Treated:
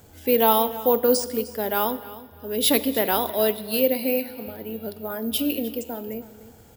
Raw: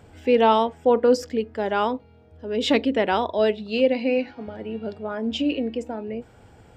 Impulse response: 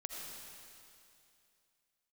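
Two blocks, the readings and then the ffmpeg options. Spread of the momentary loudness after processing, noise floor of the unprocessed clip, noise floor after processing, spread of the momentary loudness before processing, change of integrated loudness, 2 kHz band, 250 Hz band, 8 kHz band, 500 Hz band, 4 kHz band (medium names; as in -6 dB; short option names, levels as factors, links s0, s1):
15 LU, -52 dBFS, -50 dBFS, 14 LU, 0.0 dB, -2.5 dB, -2.0 dB, no reading, -2.0 dB, +2.0 dB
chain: -filter_complex "[0:a]acrusher=samples=3:mix=1:aa=0.000001,aexciter=amount=4.1:drive=1.5:freq=3700,aecho=1:1:305|610:0.133|0.0333,asplit=2[s0][s1];[1:a]atrim=start_sample=2205,asetrate=79380,aresample=44100[s2];[s1][s2]afir=irnorm=-1:irlink=0,volume=0.531[s3];[s0][s3]amix=inputs=2:normalize=0,volume=0.668"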